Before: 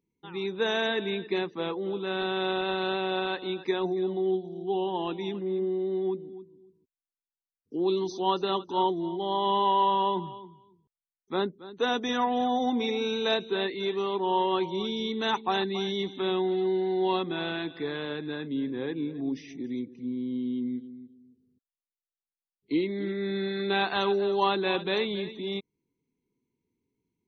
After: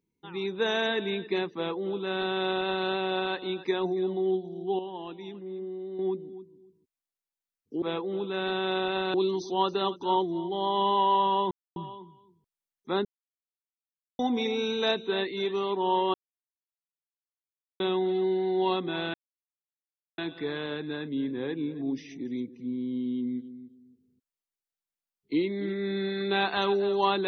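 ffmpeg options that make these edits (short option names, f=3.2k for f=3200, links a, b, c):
-filter_complex "[0:a]asplit=11[a][b][c][d][e][f][g][h][i][j][k];[a]atrim=end=4.792[l];[b]atrim=start=4.788:end=5.992,asetpts=PTS-STARTPTS,volume=-8dB[m];[c]atrim=start=5.988:end=7.822[n];[d]atrim=start=1.548:end=2.872[o];[e]atrim=start=7.818:end=10.19,asetpts=PTS-STARTPTS,afade=t=out:st=2.368:d=0.004:c=hsin,apad=pad_dur=0.25[p];[f]atrim=start=10.19:end=11.48,asetpts=PTS-STARTPTS,afade=t=in:d=0.004:c=hsin,afade=t=out:st=1.286:d=0.004:c=hsin[q];[g]atrim=start=11.48:end=12.62,asetpts=PTS-STARTPTS,volume=0[r];[h]atrim=start=12.62:end=14.57,asetpts=PTS-STARTPTS,afade=t=in:d=0.004:c=hsin,afade=t=out:st=1.946:d=0.004:c=hsin[s];[i]atrim=start=14.57:end=16.23,asetpts=PTS-STARTPTS,volume=0[t];[j]atrim=start=16.23:end=17.57,asetpts=PTS-STARTPTS,afade=t=in:d=0.004:c=hsin,afade=t=out:st=1.336:d=0.004:c=hsin,apad=pad_dur=1.04[u];[k]atrim=start=17.57,asetpts=PTS-STARTPTS,afade=t=in:d=0.004:c=hsin[v];[l][m]acrossfade=d=0.004:c1=hsin:c2=hsin[w];[w][n]acrossfade=d=0.004:c1=hsin:c2=hsin[x];[x][o]acrossfade=d=0.004:c1=hsin:c2=hsin[y];[p][q][r][s][t][u][v]concat=n=7:v=0:a=1[z];[y][z]acrossfade=d=0.004:c1=hsin:c2=hsin"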